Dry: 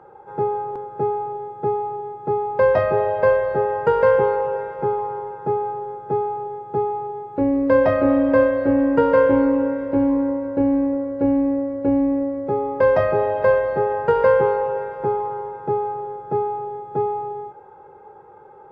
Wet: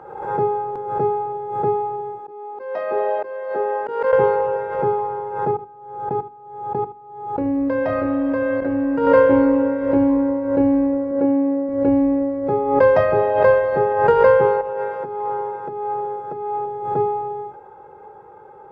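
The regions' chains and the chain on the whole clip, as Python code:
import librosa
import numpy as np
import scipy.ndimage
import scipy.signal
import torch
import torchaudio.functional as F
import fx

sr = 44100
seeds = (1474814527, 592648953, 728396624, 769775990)

y = fx.chain(x, sr, fx.highpass(hz=240.0, slope=24),
    fx.auto_swell(attack_ms=593.0), at=(2.19, 4.13))
y = fx.chain(y, sr, fx.doubler(ms=28.0, db=-9.0),
    fx.level_steps(step_db=23),
    fx.echo_single(ms=76, db=-14.0), at=(5.51, 9.07))
y = fx.chain(y, sr, fx.highpass(hz=190.0, slope=12),
    fx.air_absorb(metres=330.0), at=(11.11, 11.69))
y = fx.chain(y, sr, fx.highpass(hz=190.0, slope=6),
    fx.over_compress(threshold_db=-27.0, ratio=-1.0), at=(14.61, 16.66))
y = fx.hum_notches(y, sr, base_hz=50, count=8)
y = fx.pre_swell(y, sr, db_per_s=61.0)
y = y * 10.0 ** (2.0 / 20.0)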